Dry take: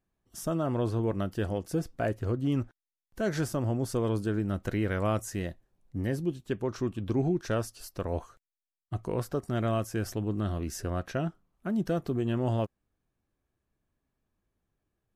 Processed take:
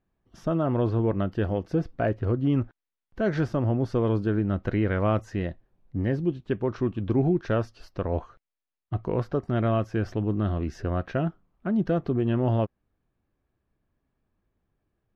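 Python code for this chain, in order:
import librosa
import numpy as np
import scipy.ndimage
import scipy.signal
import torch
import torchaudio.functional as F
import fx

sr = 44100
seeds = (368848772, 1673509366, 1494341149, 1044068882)

y = fx.air_absorb(x, sr, metres=260.0)
y = y * 10.0 ** (5.0 / 20.0)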